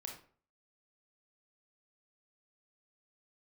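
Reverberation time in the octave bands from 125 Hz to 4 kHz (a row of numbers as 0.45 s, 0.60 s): 0.55 s, 0.45 s, 0.45 s, 0.45 s, 0.40 s, 0.30 s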